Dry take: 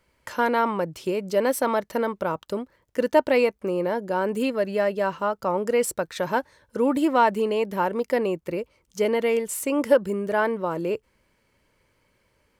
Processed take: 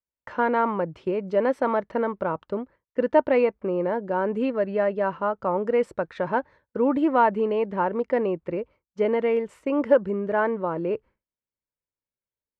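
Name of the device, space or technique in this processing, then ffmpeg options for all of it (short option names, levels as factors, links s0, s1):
hearing-loss simulation: -af "lowpass=1900,agate=range=0.0224:threshold=0.00794:ratio=3:detection=peak"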